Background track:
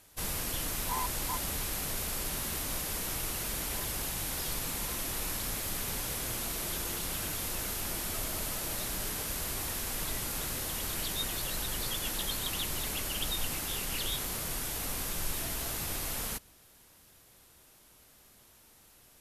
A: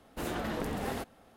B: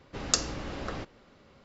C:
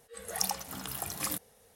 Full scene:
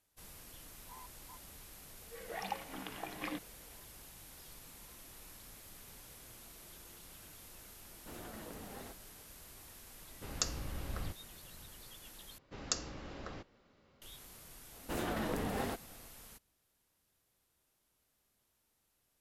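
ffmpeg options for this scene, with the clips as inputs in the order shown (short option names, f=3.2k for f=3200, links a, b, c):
-filter_complex "[1:a]asplit=2[a][b];[2:a]asplit=2[c][d];[0:a]volume=-19dB[e];[3:a]highpass=220,equalizer=f=310:t=q:w=4:g=6,equalizer=f=1.3k:t=q:w=4:g=-5,equalizer=f=2.2k:t=q:w=4:g=3,lowpass=f=3.3k:w=0.5412,lowpass=f=3.3k:w=1.3066[f];[c]asubboost=boost=10.5:cutoff=160[g];[e]asplit=2[h][i];[h]atrim=end=12.384[j];[d]atrim=end=1.64,asetpts=PTS-STARTPTS,volume=-10dB[k];[i]atrim=start=14.016[l];[f]atrim=end=1.75,asetpts=PTS-STARTPTS,volume=-2dB,afade=t=in:d=0.004:c=hsin,afade=t=out:st=1.746:d=0.004:c=hsin,adelay=2010[m];[a]atrim=end=1.36,asetpts=PTS-STARTPTS,volume=-14.5dB,afade=t=in:d=0.004:c=hsin,afade=t=out:st=1.356:d=0.004:c=hsin,adelay=7890[n];[g]atrim=end=1.64,asetpts=PTS-STARTPTS,volume=-9.5dB,afade=t=in:d=0.004:c=hsin,afade=t=out:st=1.636:d=0.004:c=hsin,adelay=10080[o];[b]atrim=end=1.36,asetpts=PTS-STARTPTS,volume=-2dB,afade=t=in:d=0.004:c=hsin,afade=t=out:st=1.356:d=0.004:c=hsin,adelay=14720[p];[j][k]acrossfade=d=0.004:c1=hsin:c2=hsin[q];[q][l]acrossfade=d=0.004:c1=hsin:c2=hsin[r];[r][m][n][o][p]amix=inputs=5:normalize=0"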